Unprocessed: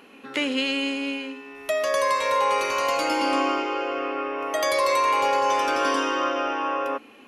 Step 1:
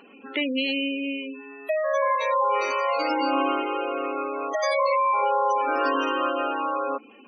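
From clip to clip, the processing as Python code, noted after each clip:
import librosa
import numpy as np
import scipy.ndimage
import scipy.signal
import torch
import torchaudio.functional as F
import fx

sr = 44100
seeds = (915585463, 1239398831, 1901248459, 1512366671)

y = fx.spec_gate(x, sr, threshold_db=-15, keep='strong')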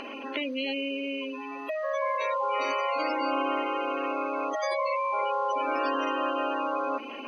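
y = fx.bin_compress(x, sr, power=0.4)
y = F.gain(torch.from_numpy(y), -8.5).numpy()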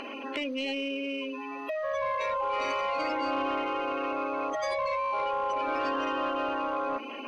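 y = 10.0 ** (-22.5 / 20.0) * np.tanh(x / 10.0 ** (-22.5 / 20.0))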